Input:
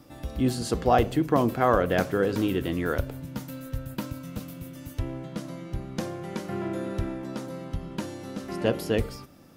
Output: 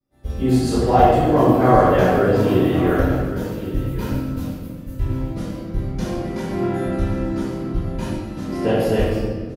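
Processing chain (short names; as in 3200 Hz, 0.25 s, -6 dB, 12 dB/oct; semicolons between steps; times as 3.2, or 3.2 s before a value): expander -31 dBFS; echo 1.115 s -15 dB; in parallel at -1.5 dB: compressor, threshold -31 dBFS, peak gain reduction 14.5 dB; on the sum: reverb RT60 1.8 s, pre-delay 3 ms, DRR -17 dB; dynamic EQ 780 Hz, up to +4 dB, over -14 dBFS, Q 1.6; gain -16 dB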